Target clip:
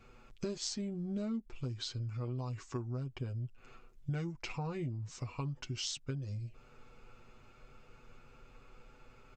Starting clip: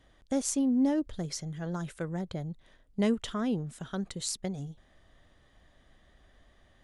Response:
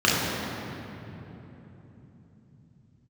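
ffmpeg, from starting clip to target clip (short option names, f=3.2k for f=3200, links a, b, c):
-af "aecho=1:1:5.9:0.75,acompressor=threshold=-40dB:ratio=4,asetrate=32193,aresample=44100,volume=2.5dB"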